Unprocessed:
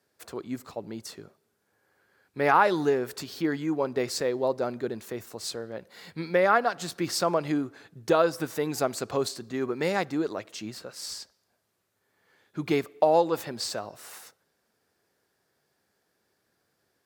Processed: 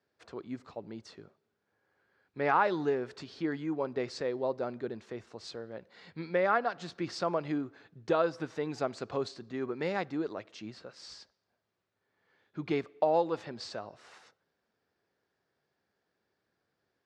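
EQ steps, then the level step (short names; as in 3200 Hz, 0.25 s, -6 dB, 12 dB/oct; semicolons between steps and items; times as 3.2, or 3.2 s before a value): LPF 5800 Hz 12 dB/oct; air absorption 75 m; -5.5 dB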